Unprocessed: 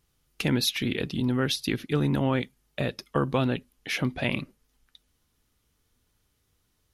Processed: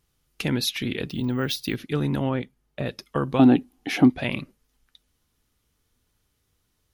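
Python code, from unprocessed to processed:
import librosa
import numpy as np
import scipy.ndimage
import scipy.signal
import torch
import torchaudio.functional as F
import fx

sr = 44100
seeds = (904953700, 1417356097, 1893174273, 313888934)

y = fx.resample_bad(x, sr, factor=2, down='none', up='hold', at=(1.09, 1.75))
y = fx.high_shelf(y, sr, hz=2300.0, db=-9.5, at=(2.29, 2.86))
y = fx.small_body(y, sr, hz=(290.0, 750.0), ring_ms=30, db=17, at=(3.39, 4.1))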